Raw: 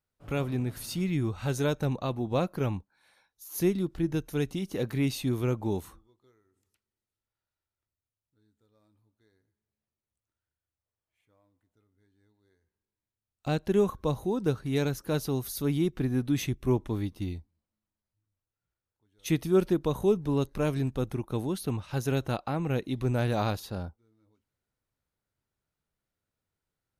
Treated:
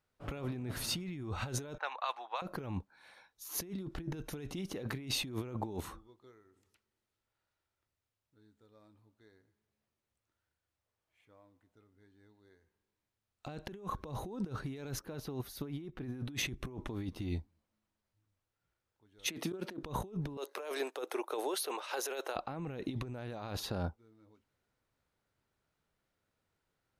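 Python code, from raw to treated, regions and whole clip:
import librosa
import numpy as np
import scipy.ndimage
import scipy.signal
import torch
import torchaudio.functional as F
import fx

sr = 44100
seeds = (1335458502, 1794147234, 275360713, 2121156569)

y = fx.chain(x, sr, fx.highpass(hz=880.0, slope=24),
    fx.env_lowpass(base_hz=1300.0, full_db=-33.0), at=(1.78, 2.42))
y = fx.chain(y, sr, fx.peak_eq(hz=7700.0, db=-6.5, octaves=1.5),
    fx.upward_expand(threshold_db=-40.0, expansion=1.5), at=(14.99, 16.05))
y = fx.chain(y, sr, fx.highpass(hz=190.0, slope=24),
    fx.auto_swell(attack_ms=109.0),
    fx.doppler_dist(depth_ms=0.11), at=(19.27, 19.83))
y = fx.chain(y, sr, fx.steep_highpass(hz=400.0, slope=36),
    fx.high_shelf(hz=8200.0, db=7.0), at=(20.37, 22.36))
y = fx.lowpass(y, sr, hz=3700.0, slope=6)
y = fx.low_shelf(y, sr, hz=220.0, db=-6.0)
y = fx.over_compress(y, sr, threshold_db=-40.0, ratio=-1.0)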